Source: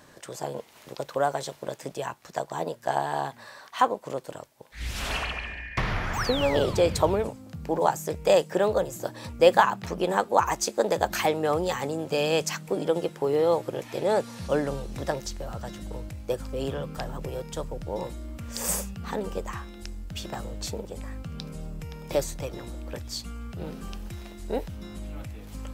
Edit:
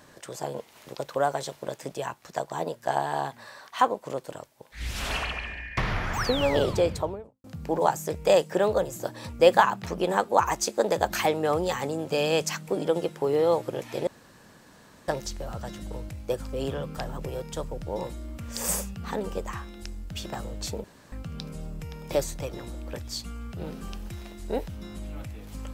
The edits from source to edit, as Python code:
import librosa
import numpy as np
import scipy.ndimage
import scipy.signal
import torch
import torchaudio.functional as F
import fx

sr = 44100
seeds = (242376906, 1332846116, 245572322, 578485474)

y = fx.studio_fade_out(x, sr, start_s=6.62, length_s=0.82)
y = fx.edit(y, sr, fx.room_tone_fill(start_s=14.07, length_s=1.01),
    fx.room_tone_fill(start_s=20.84, length_s=0.28), tone=tone)